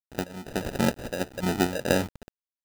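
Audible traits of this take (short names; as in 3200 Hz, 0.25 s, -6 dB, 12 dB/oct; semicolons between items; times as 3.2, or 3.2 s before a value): phasing stages 12, 2.7 Hz, lowest notch 330–4500 Hz; a quantiser's noise floor 8-bit, dither none; random-step tremolo 4.2 Hz, depth 85%; aliases and images of a low sample rate 1100 Hz, jitter 0%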